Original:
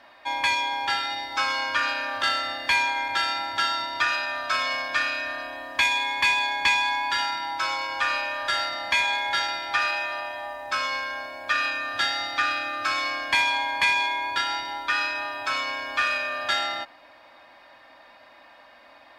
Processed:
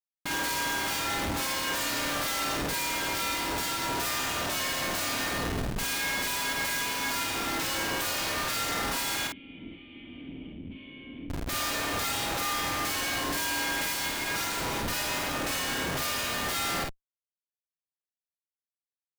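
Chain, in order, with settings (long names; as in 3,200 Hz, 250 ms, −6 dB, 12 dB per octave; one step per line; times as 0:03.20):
spectral envelope flattened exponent 0.1
comparator with hysteresis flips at −29.5 dBFS
0:09.27–0:11.30: formant resonators in series i
double-tracking delay 49 ms −3 dB
level −5 dB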